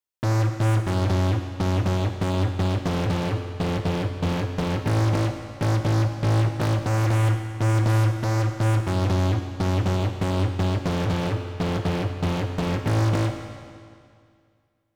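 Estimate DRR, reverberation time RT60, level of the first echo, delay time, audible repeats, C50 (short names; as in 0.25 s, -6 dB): 5.0 dB, 2.2 s, none, none, none, 6.0 dB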